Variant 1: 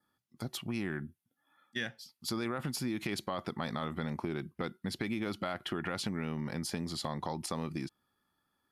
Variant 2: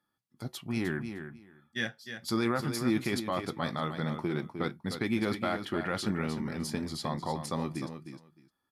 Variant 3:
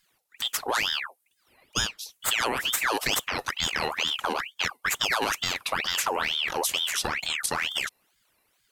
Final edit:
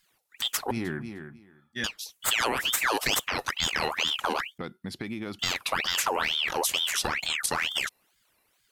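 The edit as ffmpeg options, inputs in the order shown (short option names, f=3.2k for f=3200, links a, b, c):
-filter_complex "[2:a]asplit=3[a][b][c];[a]atrim=end=0.712[d];[1:a]atrim=start=0.708:end=1.842[e];[b]atrim=start=1.838:end=4.582[f];[0:a]atrim=start=4.578:end=5.392[g];[c]atrim=start=5.388[h];[d][e]acrossfade=d=0.004:c1=hsin:c2=hsin[i];[i][f]acrossfade=d=0.004:c1=hsin:c2=hsin[j];[j][g]acrossfade=d=0.004:c1=hsin:c2=hsin[k];[k][h]acrossfade=d=0.004:c1=hsin:c2=hsin"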